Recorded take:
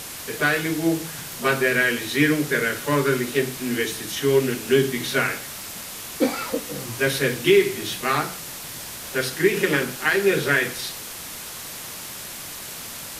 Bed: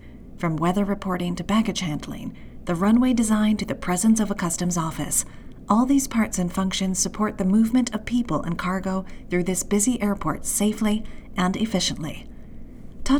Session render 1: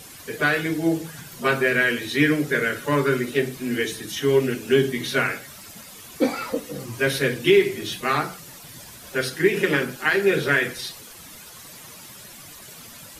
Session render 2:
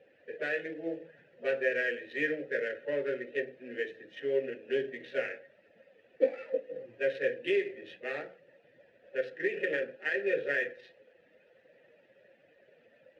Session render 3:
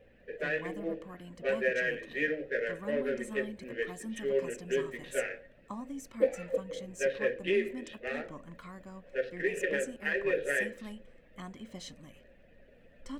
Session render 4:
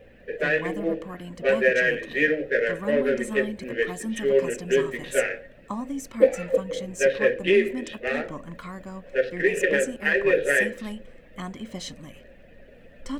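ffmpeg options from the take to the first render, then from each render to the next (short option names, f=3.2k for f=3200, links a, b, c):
-af "afftdn=nr=11:nf=-36"
-filter_complex "[0:a]adynamicsmooth=sensitivity=2.5:basefreq=1.5k,asplit=3[a][b][c];[a]bandpass=f=530:t=q:w=8,volume=0dB[d];[b]bandpass=f=1.84k:t=q:w=8,volume=-6dB[e];[c]bandpass=f=2.48k:t=q:w=8,volume=-9dB[f];[d][e][f]amix=inputs=3:normalize=0"
-filter_complex "[1:a]volume=-22.5dB[a];[0:a][a]amix=inputs=2:normalize=0"
-af "volume=9.5dB"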